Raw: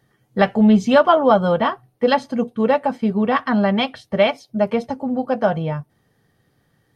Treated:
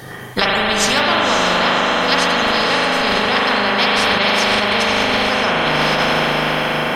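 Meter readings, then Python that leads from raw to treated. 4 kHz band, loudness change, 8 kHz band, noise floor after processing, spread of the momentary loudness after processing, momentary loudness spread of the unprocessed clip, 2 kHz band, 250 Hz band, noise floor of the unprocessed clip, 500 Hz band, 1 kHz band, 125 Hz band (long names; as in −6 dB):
+15.5 dB, +3.5 dB, can't be measured, −27 dBFS, 2 LU, 10 LU, +12.5 dB, −4.0 dB, −65 dBFS, −1.0 dB, +5.0 dB, −1.0 dB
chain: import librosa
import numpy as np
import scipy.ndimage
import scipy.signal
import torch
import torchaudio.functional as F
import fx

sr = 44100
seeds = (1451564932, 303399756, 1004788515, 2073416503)

p1 = fx.low_shelf(x, sr, hz=240.0, db=-8.5)
p2 = p1 + fx.echo_diffused(p1, sr, ms=551, feedback_pct=44, wet_db=-5.5, dry=0)
p3 = fx.rev_spring(p2, sr, rt60_s=1.5, pass_ms=(39,), chirp_ms=75, drr_db=-2.0)
p4 = fx.dynamic_eq(p3, sr, hz=1000.0, q=0.76, threshold_db=-25.0, ratio=4.0, max_db=7)
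p5 = fx.over_compress(p4, sr, threshold_db=-20.0, ratio=-0.5)
p6 = p4 + (p5 * librosa.db_to_amplitude(1.0))
p7 = fx.spectral_comp(p6, sr, ratio=4.0)
y = p7 * librosa.db_to_amplitude(-8.5)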